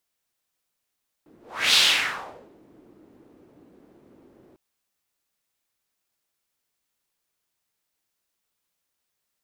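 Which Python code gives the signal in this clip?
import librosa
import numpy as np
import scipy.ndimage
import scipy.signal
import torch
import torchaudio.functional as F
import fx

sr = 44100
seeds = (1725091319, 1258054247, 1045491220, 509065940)

y = fx.whoosh(sr, seeds[0], length_s=3.3, peak_s=0.49, rise_s=0.38, fall_s=0.88, ends_hz=320.0, peak_hz=3700.0, q=2.4, swell_db=37.0)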